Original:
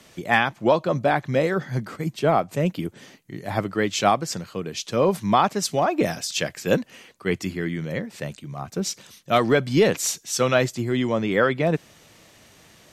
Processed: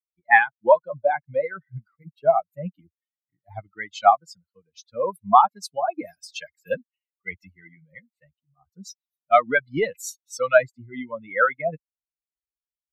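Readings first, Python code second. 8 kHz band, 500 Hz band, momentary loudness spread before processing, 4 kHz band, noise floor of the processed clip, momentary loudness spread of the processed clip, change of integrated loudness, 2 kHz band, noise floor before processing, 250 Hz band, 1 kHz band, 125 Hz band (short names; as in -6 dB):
-11.0 dB, -1.5 dB, 11 LU, -12.0 dB, under -85 dBFS, 20 LU, +1.5 dB, +2.5 dB, -53 dBFS, -13.5 dB, +3.0 dB, -14.5 dB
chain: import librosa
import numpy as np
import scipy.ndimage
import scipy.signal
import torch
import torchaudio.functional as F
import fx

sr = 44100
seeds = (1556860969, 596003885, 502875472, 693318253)

y = fx.bin_expand(x, sr, power=3.0)
y = fx.band_shelf(y, sr, hz=1100.0, db=15.0, octaves=2.3)
y = F.gain(torch.from_numpy(y), -5.0).numpy()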